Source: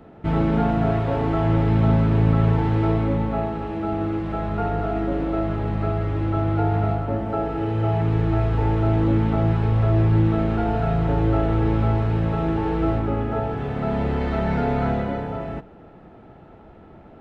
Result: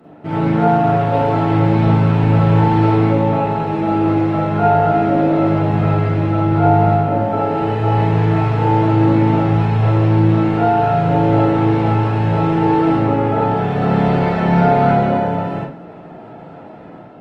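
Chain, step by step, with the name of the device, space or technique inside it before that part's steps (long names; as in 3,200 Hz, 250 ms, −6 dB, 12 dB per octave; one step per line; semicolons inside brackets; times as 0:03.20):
far-field microphone of a smart speaker (convolution reverb RT60 0.40 s, pre-delay 36 ms, DRR −5 dB; high-pass filter 130 Hz 24 dB per octave; automatic gain control gain up to 5 dB; Opus 24 kbit/s 48,000 Hz)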